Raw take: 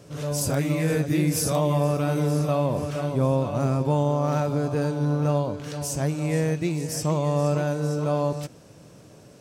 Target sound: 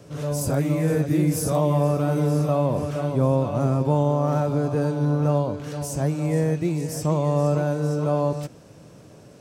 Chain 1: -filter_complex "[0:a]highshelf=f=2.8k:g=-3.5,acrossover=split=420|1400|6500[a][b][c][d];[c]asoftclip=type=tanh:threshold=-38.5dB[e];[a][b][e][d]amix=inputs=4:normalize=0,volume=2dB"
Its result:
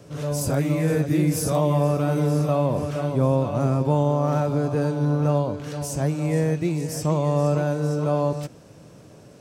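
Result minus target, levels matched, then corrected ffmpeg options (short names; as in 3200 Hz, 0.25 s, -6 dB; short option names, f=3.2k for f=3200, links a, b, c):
soft clip: distortion -5 dB
-filter_complex "[0:a]highshelf=f=2.8k:g=-3.5,acrossover=split=420|1400|6500[a][b][c][d];[c]asoftclip=type=tanh:threshold=-44.5dB[e];[a][b][e][d]amix=inputs=4:normalize=0,volume=2dB"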